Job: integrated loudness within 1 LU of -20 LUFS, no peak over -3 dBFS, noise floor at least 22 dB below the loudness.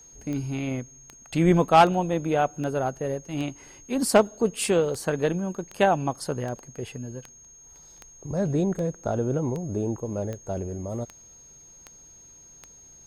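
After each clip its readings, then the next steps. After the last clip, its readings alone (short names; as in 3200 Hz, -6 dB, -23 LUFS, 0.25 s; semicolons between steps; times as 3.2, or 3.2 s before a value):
clicks 17; steady tone 6500 Hz; tone level -48 dBFS; loudness -26.0 LUFS; peak -7.5 dBFS; loudness target -20.0 LUFS
-> de-click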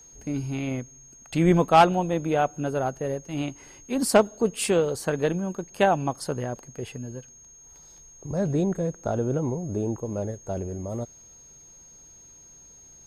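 clicks 0; steady tone 6500 Hz; tone level -48 dBFS
-> notch 6500 Hz, Q 30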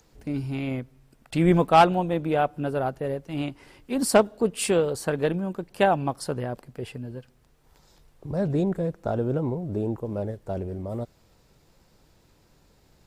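steady tone none; loudness -26.0 LUFS; peak -7.5 dBFS; loudness target -20.0 LUFS
-> gain +6 dB; limiter -3 dBFS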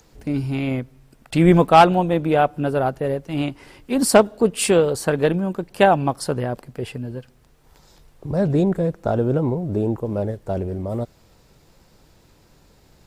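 loudness -20.0 LUFS; peak -3.0 dBFS; noise floor -55 dBFS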